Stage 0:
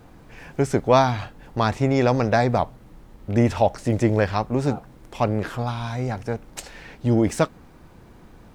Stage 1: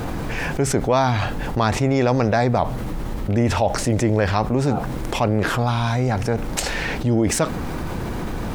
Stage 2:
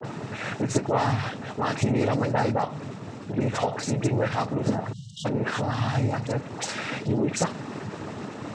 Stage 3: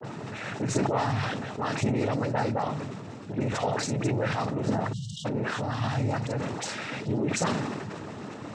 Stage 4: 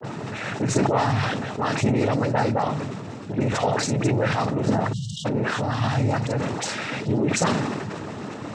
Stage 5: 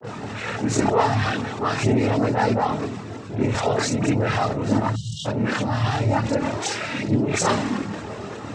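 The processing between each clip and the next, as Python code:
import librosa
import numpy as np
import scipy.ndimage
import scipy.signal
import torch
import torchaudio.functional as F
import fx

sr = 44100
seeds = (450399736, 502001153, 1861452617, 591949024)

y1 = fx.env_flatten(x, sr, amount_pct=70)
y1 = y1 * 10.0 ** (-3.0 / 20.0)
y2 = fx.dispersion(y1, sr, late='highs', ms=47.0, hz=1800.0)
y2 = fx.noise_vocoder(y2, sr, seeds[0], bands=12)
y2 = fx.spec_erase(y2, sr, start_s=4.93, length_s=0.32, low_hz=210.0, high_hz=2800.0)
y2 = y2 * 10.0 ** (-5.5 / 20.0)
y3 = fx.sustainer(y2, sr, db_per_s=30.0)
y3 = y3 * 10.0 ** (-4.0 / 20.0)
y4 = fx.attack_slew(y3, sr, db_per_s=370.0)
y4 = y4 * 10.0 ** (5.5 / 20.0)
y5 = fx.chorus_voices(y4, sr, voices=6, hz=0.33, base_ms=27, depth_ms=2.5, mix_pct=65)
y5 = y5 * 10.0 ** (4.0 / 20.0)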